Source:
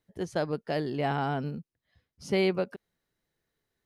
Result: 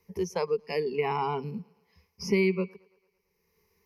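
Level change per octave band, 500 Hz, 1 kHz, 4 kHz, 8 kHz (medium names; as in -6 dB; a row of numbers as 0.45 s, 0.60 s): +2.0 dB, +1.0 dB, -1.5 dB, +5.0 dB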